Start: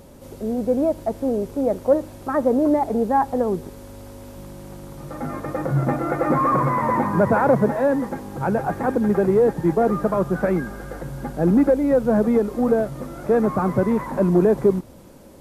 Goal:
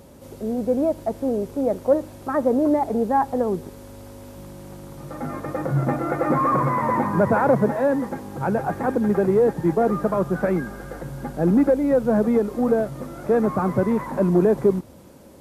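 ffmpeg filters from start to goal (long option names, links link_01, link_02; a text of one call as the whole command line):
ffmpeg -i in.wav -af "highpass=46,volume=-1dB" out.wav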